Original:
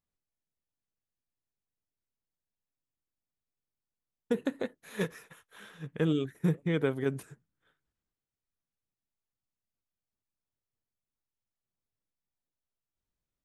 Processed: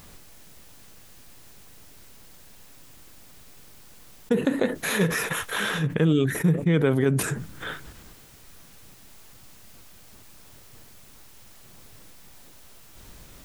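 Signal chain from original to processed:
dynamic equaliser 170 Hz, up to +4 dB, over −42 dBFS, Q 2.4
envelope flattener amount 70%
level +2.5 dB

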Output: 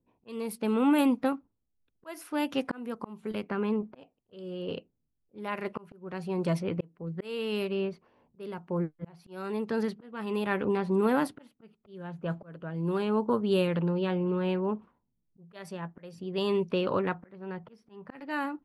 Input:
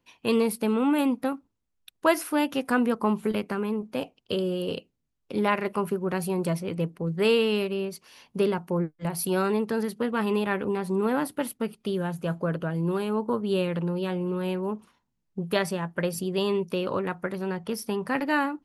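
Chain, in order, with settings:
low-pass that shuts in the quiet parts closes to 420 Hz, open at −21 dBFS
volume swells 650 ms

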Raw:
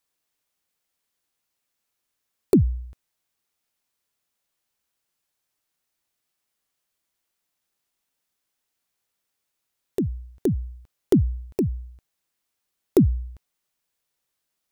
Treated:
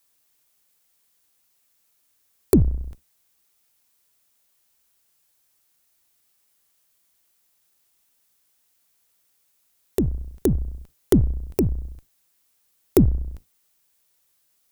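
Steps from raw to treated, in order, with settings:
sub-octave generator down 2 octaves, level −5 dB
high-shelf EQ 6,600 Hz +9 dB
in parallel at +3 dB: downward compressor, threshold −29 dBFS, peak gain reduction 16 dB
on the sum: level −1.5 dB

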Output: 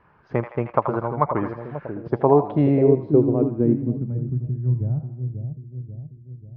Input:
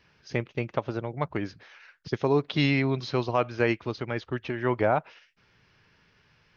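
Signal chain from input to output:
echo with a time of its own for lows and highs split 660 Hz, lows 539 ms, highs 81 ms, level −7 dB
low-pass filter sweep 1,100 Hz → 130 Hz, 0:01.93–0:04.55
level +5 dB

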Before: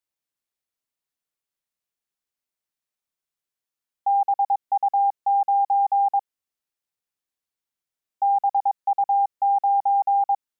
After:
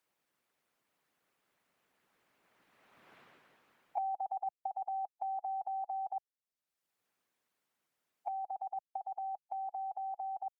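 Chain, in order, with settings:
source passing by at 0:03.17, 12 m/s, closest 2 metres
harmonic and percussive parts rebalanced harmonic −8 dB
multiband upward and downward compressor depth 100%
level +11.5 dB

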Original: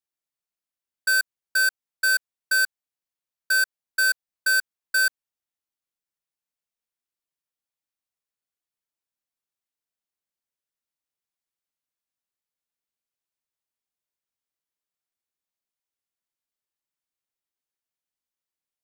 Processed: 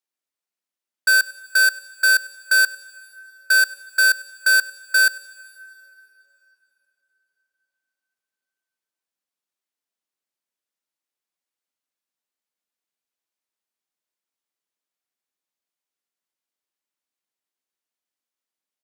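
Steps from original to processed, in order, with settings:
high-pass filter 190 Hz 24 dB per octave
high-shelf EQ 12,000 Hz −5 dB
leveller curve on the samples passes 1
single-tap delay 99 ms −22 dB
dense smooth reverb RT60 3.8 s, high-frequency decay 0.75×, DRR 19 dB
level +4.5 dB

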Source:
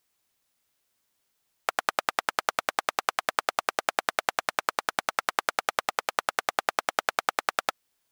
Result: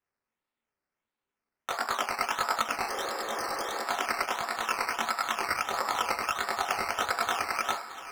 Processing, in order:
feedback delay with all-pass diffusion 566 ms, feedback 40%, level −13 dB
convolution reverb RT60 0.30 s, pre-delay 3 ms, DRR 4.5 dB
multi-voice chorus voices 6, 1.4 Hz, delay 20 ms, depth 3 ms
brickwall limiter −12.5 dBFS, peak gain reduction 10 dB
sample-and-hold swept by an LFO 10×, swing 60% 1.5 Hz
high-shelf EQ 10,000 Hz −10 dB
0:02.91–0:03.79: healed spectral selection 270–3,100 Hz after
0:05.48–0:07.48: parametric band 89 Hz +10 dB 0.77 octaves
expander for the loud parts 1.5 to 1, over −51 dBFS

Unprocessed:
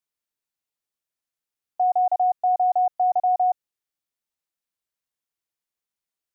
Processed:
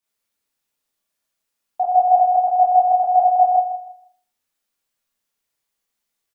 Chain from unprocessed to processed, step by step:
repeating echo 160 ms, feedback 24%, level −12 dB
four-comb reverb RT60 0.43 s, combs from 27 ms, DRR −7 dB
level +2 dB

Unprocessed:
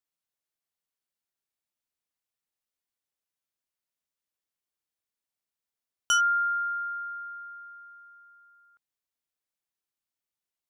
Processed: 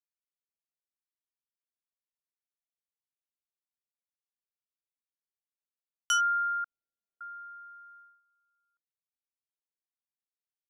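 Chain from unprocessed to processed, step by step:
noise gate −52 dBFS, range −17 dB
0:06.64–0:07.21: Butterworth low-pass 730 Hz 72 dB per octave
level −3 dB

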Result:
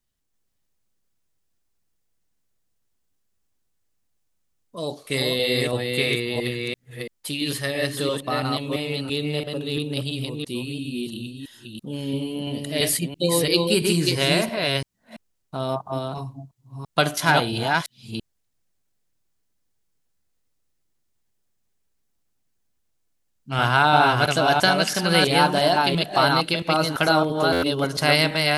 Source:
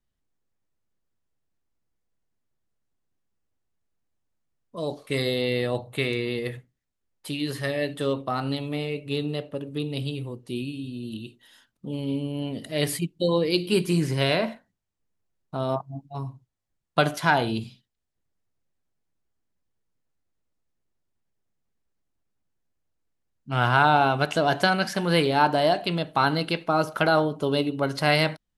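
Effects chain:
delay that plays each chunk backwards 337 ms, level −2.5 dB
high-shelf EQ 3,000 Hz +9.5 dB
buffer that repeats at 0:27.52, samples 512, times 8

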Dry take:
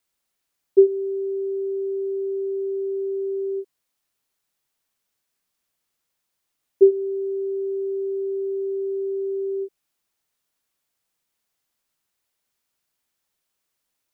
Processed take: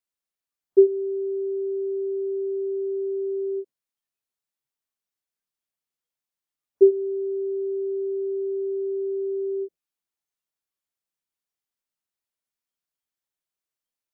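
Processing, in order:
noise reduction from a noise print of the clip's start 12 dB
level −1 dB

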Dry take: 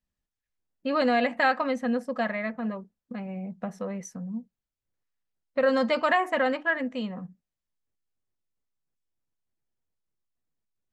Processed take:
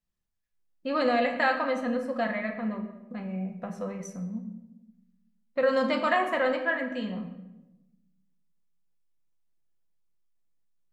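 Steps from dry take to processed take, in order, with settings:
rectangular room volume 400 cubic metres, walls mixed, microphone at 0.81 metres
level −2.5 dB

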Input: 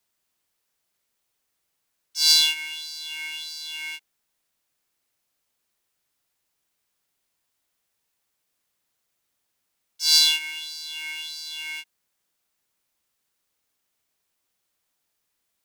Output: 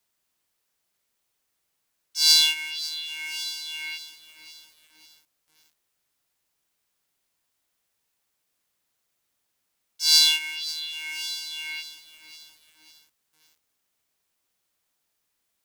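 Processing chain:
feedback echo at a low word length 548 ms, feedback 55%, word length 7 bits, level −13 dB

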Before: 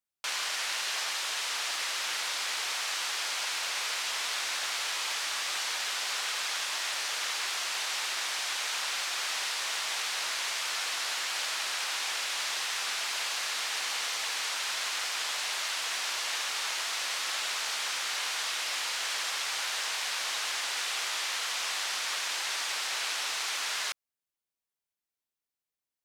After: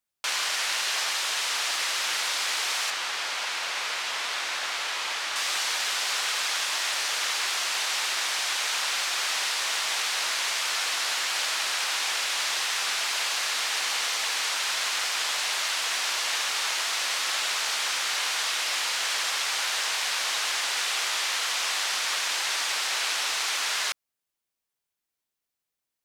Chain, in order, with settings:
0:02.90–0:05.36: high-shelf EQ 4,900 Hz −9 dB
level +5 dB

